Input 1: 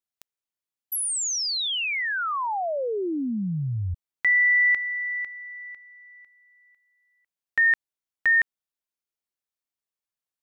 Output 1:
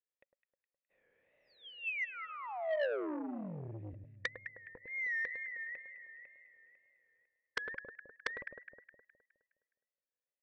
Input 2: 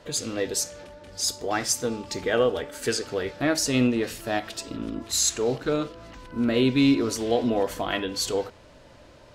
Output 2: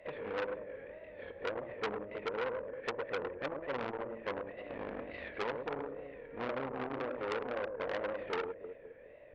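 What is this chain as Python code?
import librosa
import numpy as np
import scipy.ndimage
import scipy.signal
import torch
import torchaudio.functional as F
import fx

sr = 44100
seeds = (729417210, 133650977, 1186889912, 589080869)

p1 = fx.spec_flatten(x, sr, power=0.6)
p2 = fx.formant_cascade(p1, sr, vowel='e')
p3 = fx.notch(p2, sr, hz=1300.0, q=17.0)
p4 = fx.dynamic_eq(p3, sr, hz=530.0, q=1.3, threshold_db=-42.0, ratio=4.0, max_db=3)
p5 = fx.rider(p4, sr, range_db=4, speed_s=0.5)
p6 = fx.wow_flutter(p5, sr, seeds[0], rate_hz=2.1, depth_cents=140.0)
p7 = fx.env_lowpass_down(p6, sr, base_hz=340.0, full_db=-29.5)
p8 = p7 + fx.echo_alternate(p7, sr, ms=104, hz=1300.0, feedback_pct=65, wet_db=-7.5, dry=0)
p9 = fx.transformer_sat(p8, sr, knee_hz=2400.0)
y = F.gain(torch.from_numpy(p9), 3.5).numpy()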